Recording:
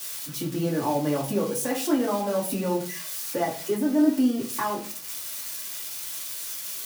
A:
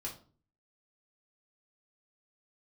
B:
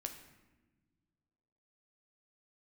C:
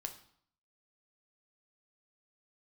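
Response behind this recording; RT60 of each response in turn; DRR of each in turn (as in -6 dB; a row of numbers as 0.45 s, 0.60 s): A; 0.40 s, no single decay rate, 0.60 s; -3.5 dB, 4.5 dB, 5.0 dB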